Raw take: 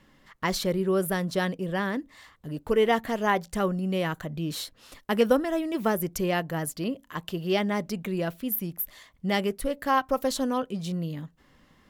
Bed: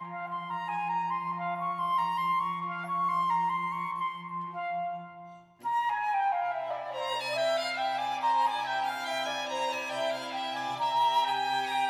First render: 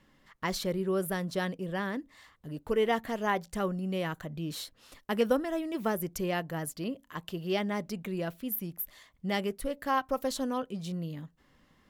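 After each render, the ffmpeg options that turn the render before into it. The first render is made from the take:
-af "volume=0.562"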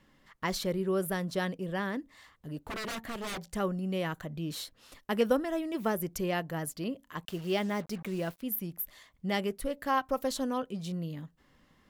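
-filter_complex "[0:a]asettb=1/sr,asplit=3[s0][s1][s2];[s0]atrim=end=2.624[s3];[s1]atrim=start=2.62:end=3.44,asetpts=PTS-STARTPTS,afade=t=in:d=0.004:c=qsin,afade=t=out:st=0.816:d=0.004:c=qsin,aeval=exprs='0.0251*(abs(mod(val(0)/0.0251+3,4)-2)-1)':c=same[s4];[s2]atrim=start=3.436[s5];[s3][s4]acrossfade=d=0.004:c1=hsin:c2=qsin[s6];[s6][s5]acrossfade=d=0.004:c1=qsin:c2=hsin,asettb=1/sr,asplit=3[s7][s8][s9];[s7]atrim=end=7.254[s10];[s8]atrim=start=7.25:end=8.42,asetpts=PTS-STARTPTS,afade=t=in:d=0.004:c=qsin,afade=t=out:st=1.166:d=0.004:c=qsin,acrusher=bits=7:mix=0:aa=0.5[s11];[s9]atrim=start=8.416[s12];[s10][s11]acrossfade=d=0.004:c1=hsin:c2=qsin[s13];[s13][s12]acrossfade=d=0.004:c1=qsin:c2=hsin"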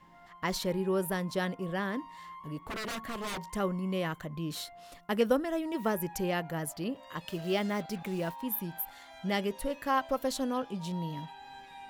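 -filter_complex "[1:a]volume=0.112[s0];[0:a][s0]amix=inputs=2:normalize=0"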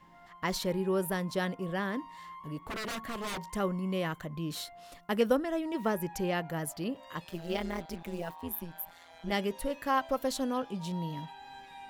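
-filter_complex "[0:a]asettb=1/sr,asplit=3[s0][s1][s2];[s0]atrim=end=5.354[s3];[s1]atrim=start=5.35:end=6.5,asetpts=PTS-STARTPTS,afade=t=in:d=0.004:c=qsin,afade=t=out:st=1.146:d=0.004:c=qsin,highshelf=f=9800:g=-7[s4];[s2]atrim=start=6.496[s5];[s3][s4]acrossfade=d=0.004:c1=hsin:c2=qsin[s6];[s6][s5]acrossfade=d=0.004:c1=qsin:c2=hsin,asettb=1/sr,asplit=3[s7][s8][s9];[s7]atrim=end=7.244[s10];[s8]atrim=start=7.24:end=9.32,asetpts=PTS-STARTPTS,afade=t=in:d=0.004:c=qsin,afade=t=out:st=2.076:d=0.004:c=qsin,tremolo=f=170:d=0.857[s11];[s9]atrim=start=9.316[s12];[s10][s11]acrossfade=d=0.004:c1=hsin:c2=qsin[s13];[s13][s12]acrossfade=d=0.004:c1=qsin:c2=hsin"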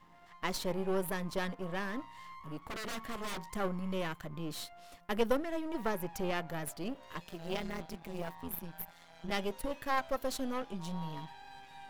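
-af "aeval=exprs='if(lt(val(0),0),0.251*val(0),val(0))':c=same"

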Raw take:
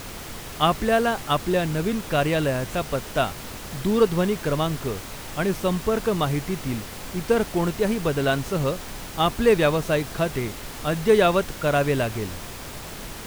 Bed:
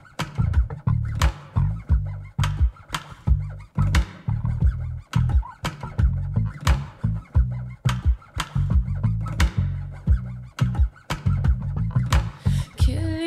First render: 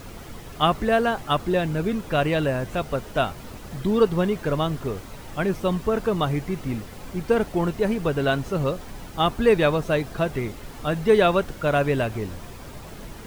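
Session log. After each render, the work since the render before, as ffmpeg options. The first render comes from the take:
-af "afftdn=nr=9:nf=-37"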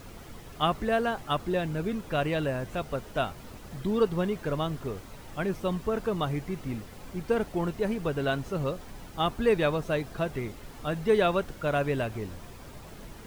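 -af "volume=0.501"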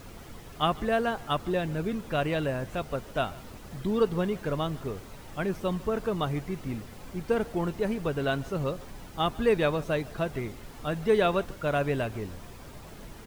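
-af "aecho=1:1:147:0.0794"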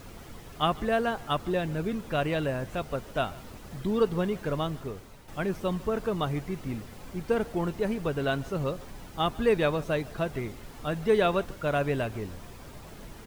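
-filter_complex "[0:a]asplit=2[s0][s1];[s0]atrim=end=5.28,asetpts=PTS-STARTPTS,afade=t=out:st=4.63:d=0.65:silence=0.421697[s2];[s1]atrim=start=5.28,asetpts=PTS-STARTPTS,afade=t=in:d=0.004:c=hsin:silence=0.421697[s3];[s2][s3]concat=n=2:v=0:a=1"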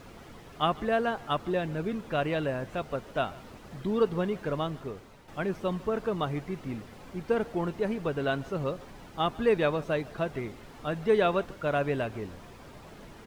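-af "lowpass=f=3900:p=1,lowshelf=f=100:g=-8.5"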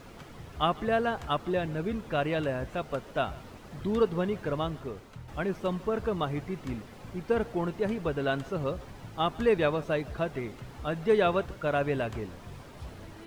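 -filter_complex "[1:a]volume=0.0596[s0];[0:a][s0]amix=inputs=2:normalize=0"

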